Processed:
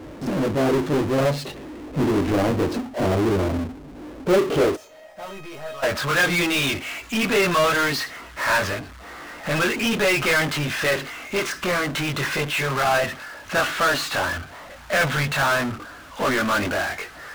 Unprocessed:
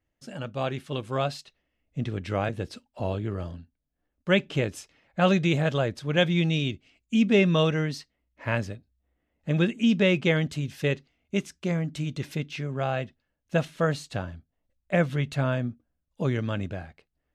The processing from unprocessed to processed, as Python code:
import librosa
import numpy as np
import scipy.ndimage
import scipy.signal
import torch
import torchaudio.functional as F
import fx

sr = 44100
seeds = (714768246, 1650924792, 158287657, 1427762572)

y = fx.chorus_voices(x, sr, voices=4, hz=0.19, base_ms=21, depth_ms=1.8, mix_pct=50)
y = fx.filter_sweep_bandpass(y, sr, from_hz=320.0, to_hz=1300.0, start_s=3.98, end_s=5.89, q=2.0)
y = fx.power_curve(y, sr, exponent=0.35)
y = fx.comb_fb(y, sr, f0_hz=630.0, decay_s=0.38, harmonics='all', damping=0.0, mix_pct=90, at=(4.75, 5.82), fade=0.02)
y = y * librosa.db_to_amplitude(7.0)